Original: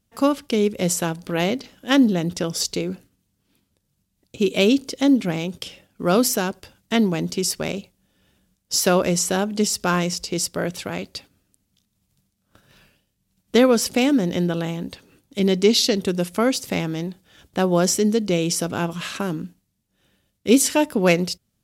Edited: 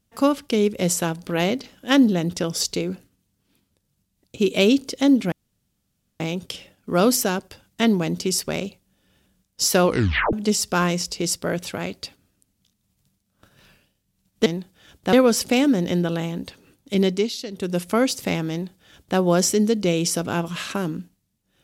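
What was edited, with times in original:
0:05.32: splice in room tone 0.88 s
0:08.96: tape stop 0.49 s
0:15.48–0:16.24: duck −13 dB, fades 0.29 s
0:16.96–0:17.63: duplicate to 0:13.58

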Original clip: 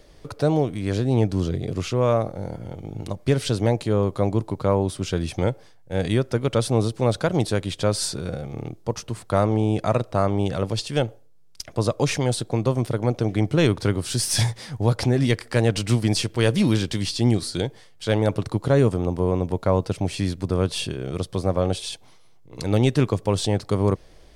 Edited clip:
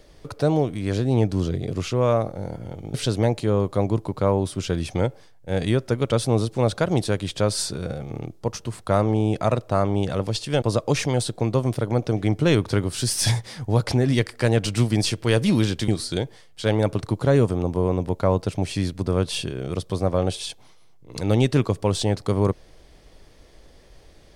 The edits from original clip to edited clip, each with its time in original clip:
0:02.94–0:03.37: remove
0:11.05–0:11.74: remove
0:17.00–0:17.31: remove

